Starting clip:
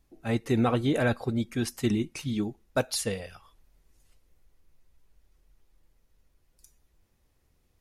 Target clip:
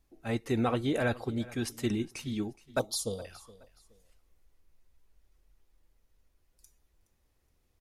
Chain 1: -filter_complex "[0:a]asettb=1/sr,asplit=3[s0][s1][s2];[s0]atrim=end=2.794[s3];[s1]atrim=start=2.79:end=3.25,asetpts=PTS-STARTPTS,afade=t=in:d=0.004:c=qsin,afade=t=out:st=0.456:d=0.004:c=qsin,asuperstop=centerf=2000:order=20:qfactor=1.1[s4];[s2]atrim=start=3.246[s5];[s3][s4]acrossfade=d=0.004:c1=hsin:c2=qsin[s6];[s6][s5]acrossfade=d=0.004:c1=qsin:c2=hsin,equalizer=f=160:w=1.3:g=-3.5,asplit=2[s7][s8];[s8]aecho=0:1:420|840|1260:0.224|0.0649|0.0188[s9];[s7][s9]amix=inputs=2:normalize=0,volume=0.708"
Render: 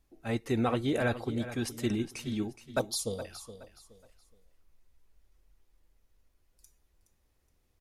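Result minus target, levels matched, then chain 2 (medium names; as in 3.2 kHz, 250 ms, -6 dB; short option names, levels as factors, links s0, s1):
echo-to-direct +7 dB
-filter_complex "[0:a]asettb=1/sr,asplit=3[s0][s1][s2];[s0]atrim=end=2.794[s3];[s1]atrim=start=2.79:end=3.25,asetpts=PTS-STARTPTS,afade=t=in:d=0.004:c=qsin,afade=t=out:st=0.456:d=0.004:c=qsin,asuperstop=centerf=2000:order=20:qfactor=1.1[s4];[s2]atrim=start=3.246[s5];[s3][s4]acrossfade=d=0.004:c1=hsin:c2=qsin[s6];[s6][s5]acrossfade=d=0.004:c1=qsin:c2=hsin,equalizer=f=160:w=1.3:g=-3.5,asplit=2[s7][s8];[s8]aecho=0:1:420|840:0.1|0.029[s9];[s7][s9]amix=inputs=2:normalize=0,volume=0.708"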